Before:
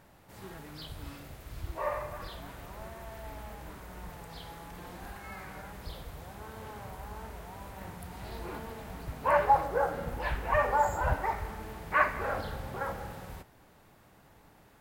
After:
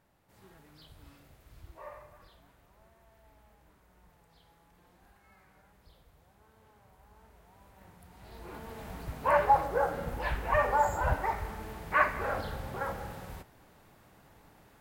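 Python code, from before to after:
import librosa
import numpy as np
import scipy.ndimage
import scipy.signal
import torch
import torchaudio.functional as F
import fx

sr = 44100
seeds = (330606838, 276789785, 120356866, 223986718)

y = fx.gain(x, sr, db=fx.line((1.55, -11.5), (2.63, -18.0), (6.83, -18.0), (8.15, -11.0), (8.84, 0.0)))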